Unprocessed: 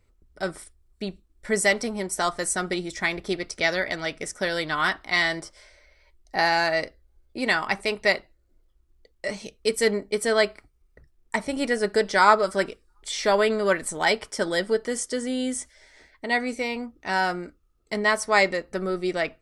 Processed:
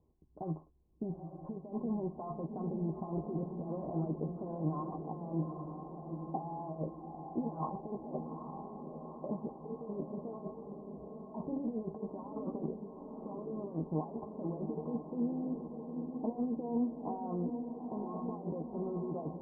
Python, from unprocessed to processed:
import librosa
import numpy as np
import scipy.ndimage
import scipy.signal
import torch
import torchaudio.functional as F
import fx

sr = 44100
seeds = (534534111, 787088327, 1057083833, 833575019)

y = fx.highpass(x, sr, hz=83.0, slope=6)
y = fx.peak_eq(y, sr, hz=160.0, db=10.0, octaves=0.4)
y = fx.over_compress(y, sr, threshold_db=-31.0, ratio=-1.0)
y = scipy.signal.sosfilt(scipy.signal.cheby1(6, 6, 1100.0, 'lowpass', fs=sr, output='sos'), y)
y = fx.doubler(y, sr, ms=13.0, db=-8)
y = fx.echo_diffused(y, sr, ms=857, feedback_pct=62, wet_db=-6)
y = y * 10.0 ** (-5.0 / 20.0)